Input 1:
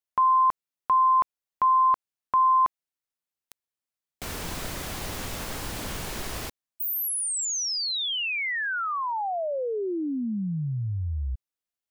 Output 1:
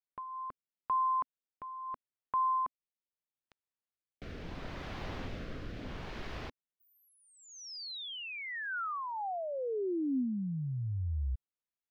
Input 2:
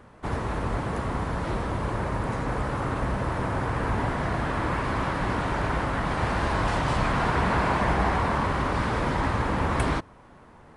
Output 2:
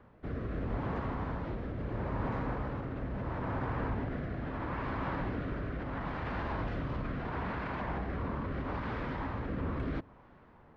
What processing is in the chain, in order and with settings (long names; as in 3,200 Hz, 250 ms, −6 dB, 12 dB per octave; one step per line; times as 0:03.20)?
dynamic equaliser 260 Hz, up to +4 dB, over −47 dBFS, Q 6.3
brickwall limiter −20.5 dBFS
rotating-speaker cabinet horn 0.75 Hz
high-frequency loss of the air 260 metres
level −4 dB